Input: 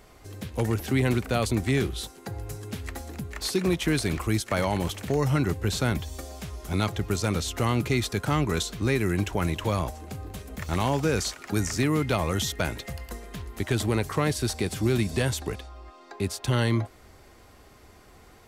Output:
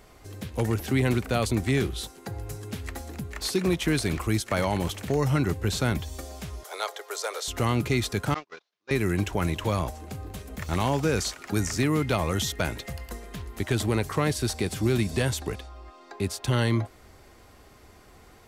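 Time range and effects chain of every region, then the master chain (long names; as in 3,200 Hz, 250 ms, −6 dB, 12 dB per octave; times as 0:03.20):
0:06.63–0:07.48: Butterworth high-pass 440 Hz 48 dB per octave + parametric band 2,600 Hz −7.5 dB 0.29 octaves
0:08.34–0:08.91: linear delta modulator 32 kbit/s, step −37.5 dBFS + high-pass filter 600 Hz + noise gate −32 dBFS, range −42 dB
whole clip: no processing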